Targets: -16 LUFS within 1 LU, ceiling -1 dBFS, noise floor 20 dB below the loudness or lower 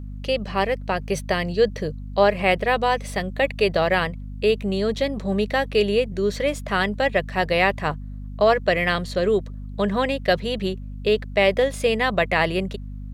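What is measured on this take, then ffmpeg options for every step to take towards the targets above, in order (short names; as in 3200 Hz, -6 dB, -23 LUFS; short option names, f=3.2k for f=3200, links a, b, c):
hum 50 Hz; harmonics up to 250 Hz; hum level -31 dBFS; loudness -22.5 LUFS; peak -5.0 dBFS; loudness target -16.0 LUFS
-> -af "bandreject=f=50:t=h:w=4,bandreject=f=100:t=h:w=4,bandreject=f=150:t=h:w=4,bandreject=f=200:t=h:w=4,bandreject=f=250:t=h:w=4"
-af "volume=6.5dB,alimiter=limit=-1dB:level=0:latency=1"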